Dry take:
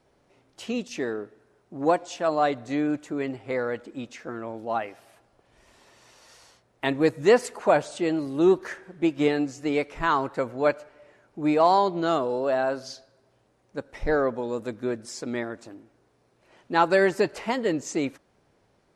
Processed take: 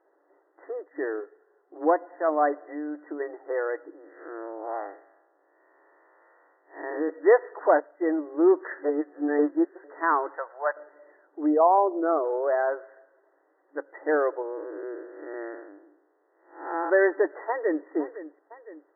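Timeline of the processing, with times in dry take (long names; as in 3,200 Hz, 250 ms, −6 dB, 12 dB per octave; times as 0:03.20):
0:01.20–0:01.77: notch comb filter 310 Hz
0:02.55–0:03.20: downward compressor, threshold −29 dBFS
0:03.93–0:07.10: spectrum smeared in time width 165 ms
0:07.80–0:08.27: multiband upward and downward expander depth 70%
0:08.83–0:09.84: reverse
0:10.37–0:10.77: high-pass filter 670 Hz 24 dB per octave
0:11.46–0:12.24: spectral envelope exaggerated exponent 1.5
0:12.79–0:13.83: high-shelf EQ 2,300 Hz +11.5 dB
0:14.42–0:16.90: spectrum smeared in time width 250 ms
0:17.48–0:17.88: delay throw 510 ms, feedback 55%, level −14 dB
whole clip: brick-wall band-pass 280–2,000 Hz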